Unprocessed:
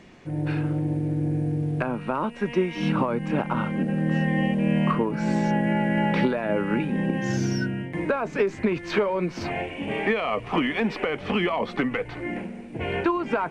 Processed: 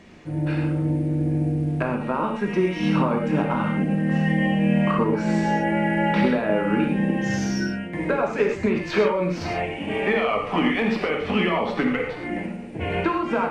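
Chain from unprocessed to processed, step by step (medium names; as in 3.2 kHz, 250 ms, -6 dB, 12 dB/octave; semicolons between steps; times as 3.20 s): gated-style reverb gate 150 ms flat, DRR 1 dB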